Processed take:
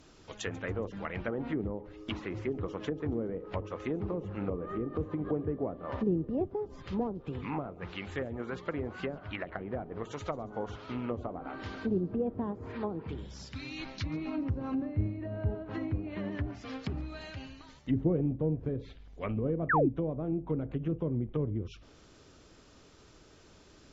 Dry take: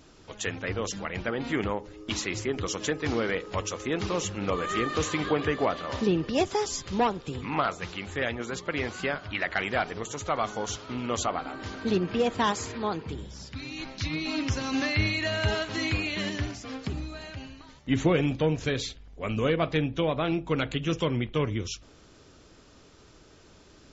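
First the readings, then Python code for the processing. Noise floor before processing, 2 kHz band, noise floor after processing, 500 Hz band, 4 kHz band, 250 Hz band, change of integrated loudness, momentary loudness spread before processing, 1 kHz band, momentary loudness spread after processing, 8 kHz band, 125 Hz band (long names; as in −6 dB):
−55 dBFS, −11.0 dB, −58 dBFS, −6.0 dB, −16.0 dB, −3.5 dB, −6.0 dB, 10 LU, −9.0 dB, 10 LU, can't be measured, −3.0 dB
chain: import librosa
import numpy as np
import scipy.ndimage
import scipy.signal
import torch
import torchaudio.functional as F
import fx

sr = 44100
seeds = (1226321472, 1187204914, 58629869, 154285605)

y = fx.env_lowpass_down(x, sr, base_hz=420.0, full_db=-24.5)
y = fx.echo_wet_highpass(y, sr, ms=140, feedback_pct=43, hz=3600.0, wet_db=-19.0)
y = fx.spec_paint(y, sr, seeds[0], shape='fall', start_s=19.69, length_s=0.2, low_hz=240.0, high_hz=2000.0, level_db=-23.0)
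y = F.gain(torch.from_numpy(y), -3.0).numpy()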